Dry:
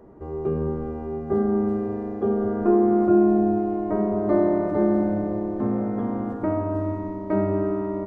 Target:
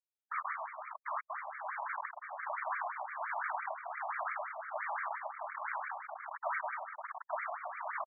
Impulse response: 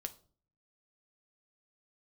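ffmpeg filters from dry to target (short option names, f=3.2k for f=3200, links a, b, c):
-filter_complex "[0:a]highpass=240,bandreject=f=60:t=h:w=6,bandreject=f=120:t=h:w=6,bandreject=f=180:t=h:w=6,bandreject=f=240:t=h:w=6,bandreject=f=300:t=h:w=6,bandreject=f=360:t=h:w=6,bandreject=f=420:t=h:w=6,bandreject=f=480:t=h:w=6,bandreject=f=540:t=h:w=6,bandreject=f=600:t=h:w=6,afftfilt=real='re*gte(hypot(re,im),0.0794)':imag='im*gte(hypot(re,im),0.0794)':win_size=1024:overlap=0.75,equalizer=f=840:w=3:g=-10,acompressor=threshold=-27dB:ratio=10,aeval=exprs='sgn(val(0))*max(abs(val(0))-0.00266,0)':c=same,acrusher=bits=4:mix=0:aa=0.000001,afftfilt=real='hypot(re,im)*cos(2*PI*random(0))':imag='hypot(re,im)*sin(2*PI*random(1))':win_size=512:overlap=0.75,acrossover=split=620[a][b];[a]aeval=exprs='val(0)*(1-0.7/2+0.7/2*cos(2*PI*1.3*n/s))':c=same[c];[b]aeval=exprs='val(0)*(1-0.7/2-0.7/2*cos(2*PI*1.3*n/s))':c=same[d];[c][d]amix=inputs=2:normalize=0,asoftclip=type=hard:threshold=-28.5dB,aresample=16000,aresample=44100,afftfilt=real='re*between(b*sr/1024,820*pow(1700/820,0.5+0.5*sin(2*PI*5.8*pts/sr))/1.41,820*pow(1700/820,0.5+0.5*sin(2*PI*5.8*pts/sr))*1.41)':imag='im*between(b*sr/1024,820*pow(1700/820,0.5+0.5*sin(2*PI*5.8*pts/sr))/1.41,820*pow(1700/820,0.5+0.5*sin(2*PI*5.8*pts/sr))*1.41)':win_size=1024:overlap=0.75,volume=10dB"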